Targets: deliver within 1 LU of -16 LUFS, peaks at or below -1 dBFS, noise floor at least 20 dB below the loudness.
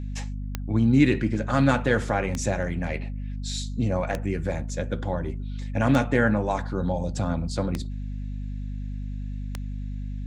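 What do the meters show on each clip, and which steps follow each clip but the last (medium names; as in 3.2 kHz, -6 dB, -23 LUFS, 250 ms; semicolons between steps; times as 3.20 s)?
clicks found 6; hum 50 Hz; highest harmonic 250 Hz; hum level -29 dBFS; loudness -26.5 LUFS; peak level -6.5 dBFS; loudness target -16.0 LUFS
-> de-click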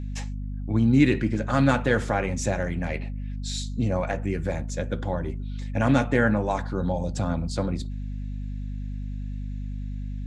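clicks found 0; hum 50 Hz; highest harmonic 250 Hz; hum level -29 dBFS
-> hum notches 50/100/150/200/250 Hz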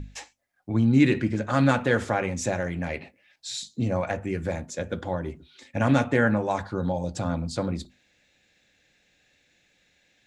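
hum not found; loudness -26.0 LUFS; peak level -6.5 dBFS; loudness target -16.0 LUFS
-> trim +10 dB; peak limiter -1 dBFS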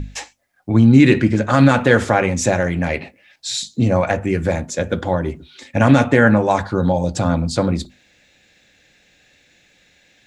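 loudness -16.5 LUFS; peak level -1.0 dBFS; noise floor -57 dBFS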